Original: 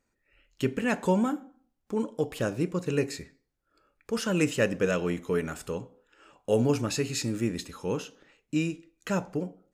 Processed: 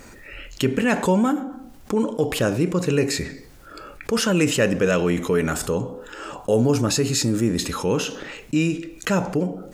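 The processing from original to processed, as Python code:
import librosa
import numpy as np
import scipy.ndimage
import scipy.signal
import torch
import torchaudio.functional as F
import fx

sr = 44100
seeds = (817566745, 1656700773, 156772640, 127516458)

y = fx.peak_eq(x, sr, hz=2400.0, db=-6.5, octaves=0.85, at=(5.53, 7.61))
y = fx.env_flatten(y, sr, amount_pct=50)
y = y * librosa.db_to_amplitude(4.5)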